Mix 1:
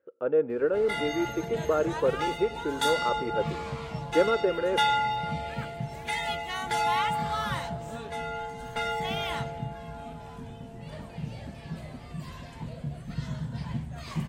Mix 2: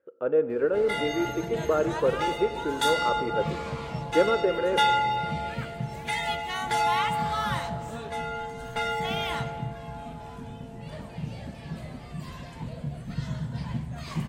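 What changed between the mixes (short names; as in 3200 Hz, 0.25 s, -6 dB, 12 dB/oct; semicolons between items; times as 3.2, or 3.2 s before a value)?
speech: send +10.0 dB; background: send on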